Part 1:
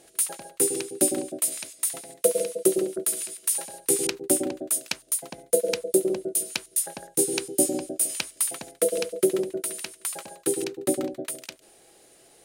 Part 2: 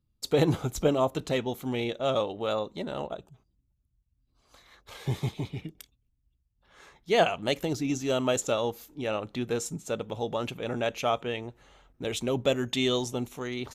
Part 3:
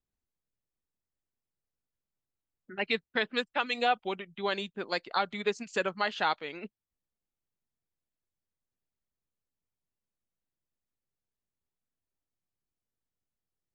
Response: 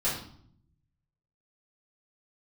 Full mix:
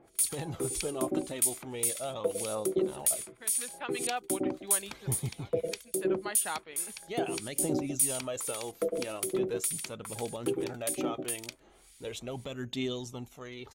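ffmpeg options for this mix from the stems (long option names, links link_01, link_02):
-filter_complex "[0:a]aecho=1:1:0.9:0.38,alimiter=limit=-13.5dB:level=0:latency=1:release=157,acrossover=split=1700[link_01][link_02];[link_01]aeval=exprs='val(0)*(1-1/2+1/2*cos(2*PI*1.8*n/s))':channel_layout=same[link_03];[link_02]aeval=exprs='val(0)*(1-1/2-1/2*cos(2*PI*1.8*n/s))':channel_layout=same[link_04];[link_03][link_04]amix=inputs=2:normalize=0,volume=-0.5dB[link_05];[1:a]alimiter=limit=-18.5dB:level=0:latency=1:release=119,aphaser=in_gain=1:out_gain=1:delay=3.5:decay=0.45:speed=0.39:type=triangular,volume=-9dB,asplit=2[link_06][link_07];[2:a]adelay=250,volume=-8dB[link_08];[link_07]apad=whole_len=616988[link_09];[link_08][link_09]sidechaincompress=threshold=-55dB:ratio=8:attack=12:release=582[link_10];[link_05][link_06][link_10]amix=inputs=3:normalize=0"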